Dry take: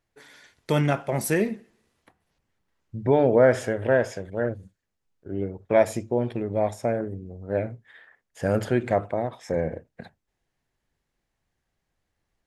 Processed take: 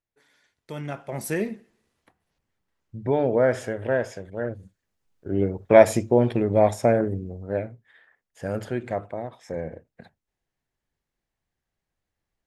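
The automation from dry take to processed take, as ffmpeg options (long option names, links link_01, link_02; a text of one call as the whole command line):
ffmpeg -i in.wav -af "volume=6dB,afade=type=in:start_time=0.76:duration=0.66:silence=0.316228,afade=type=in:start_time=4.46:duration=0.94:silence=0.354813,afade=type=out:start_time=7.17:duration=0.52:silence=0.266073" out.wav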